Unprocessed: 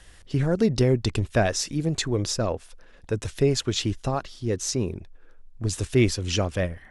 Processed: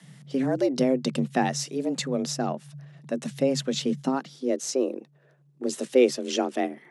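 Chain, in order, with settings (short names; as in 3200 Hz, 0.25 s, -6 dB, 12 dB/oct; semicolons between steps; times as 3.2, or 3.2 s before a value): frequency shift +130 Hz; high-pass sweep 110 Hz -> 350 Hz, 3.41–4.64; gain -3.5 dB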